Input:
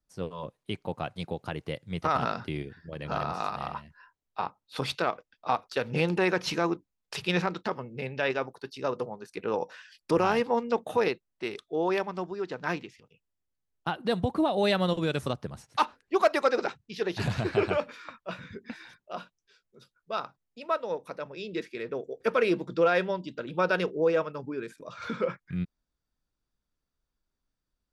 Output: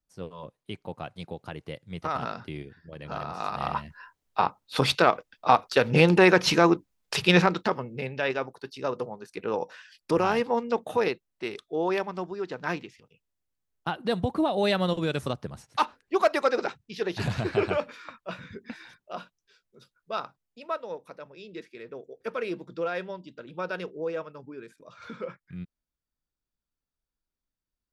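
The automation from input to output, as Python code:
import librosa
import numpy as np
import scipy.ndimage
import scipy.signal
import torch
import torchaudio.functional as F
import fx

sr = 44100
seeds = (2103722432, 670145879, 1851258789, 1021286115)

y = fx.gain(x, sr, db=fx.line((3.31, -3.5), (3.77, 8.0), (7.39, 8.0), (8.19, 0.5), (20.17, 0.5), (21.34, -7.0)))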